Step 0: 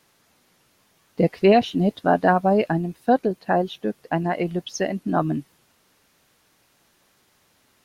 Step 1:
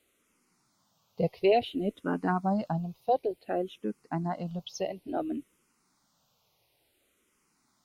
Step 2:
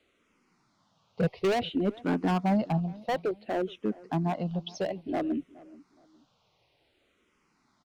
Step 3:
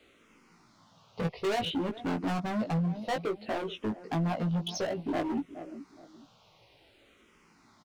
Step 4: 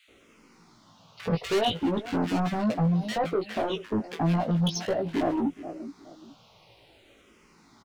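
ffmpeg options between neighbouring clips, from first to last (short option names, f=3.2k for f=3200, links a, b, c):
-filter_complex "[0:a]equalizer=f=1.7k:t=o:w=0.23:g=-11.5,asplit=2[a][b];[b]afreqshift=-0.57[c];[a][c]amix=inputs=2:normalize=1,volume=-6dB"
-filter_complex "[0:a]lowpass=4k,acrossover=split=270[a][b];[b]volume=30.5dB,asoftclip=hard,volume=-30.5dB[c];[a][c]amix=inputs=2:normalize=0,asplit=2[d][e];[e]adelay=420,lowpass=f=1.7k:p=1,volume=-21dB,asplit=2[f][g];[g]adelay=420,lowpass=f=1.7k:p=1,volume=0.3[h];[d][f][h]amix=inputs=3:normalize=0,volume=4dB"
-filter_complex "[0:a]acompressor=threshold=-36dB:ratio=2.5,asoftclip=type=hard:threshold=-36.5dB,asplit=2[a][b];[b]adelay=18,volume=-4dB[c];[a][c]amix=inputs=2:normalize=0,volume=7dB"
-filter_complex "[0:a]acrossover=split=1600[a][b];[a]adelay=80[c];[c][b]amix=inputs=2:normalize=0,volume=5dB"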